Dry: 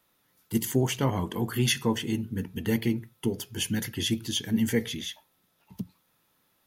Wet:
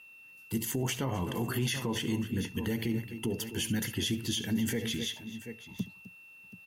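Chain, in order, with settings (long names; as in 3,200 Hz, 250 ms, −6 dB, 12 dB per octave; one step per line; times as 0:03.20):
multi-tap delay 69/257/731 ms −18/−16.5/−17.5 dB
steady tone 2,700 Hz −51 dBFS
brickwall limiter −22.5 dBFS, peak gain reduction 10.5 dB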